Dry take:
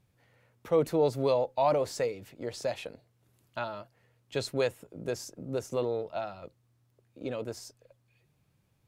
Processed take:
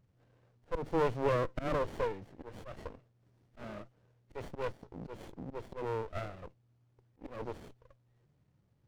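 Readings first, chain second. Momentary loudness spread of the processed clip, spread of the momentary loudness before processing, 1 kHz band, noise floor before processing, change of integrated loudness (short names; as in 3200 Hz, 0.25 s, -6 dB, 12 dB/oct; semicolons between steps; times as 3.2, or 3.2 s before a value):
19 LU, 15 LU, -4.5 dB, -71 dBFS, -6.0 dB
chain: nonlinear frequency compression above 1100 Hz 1.5:1; auto swell 0.16 s; running maximum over 33 samples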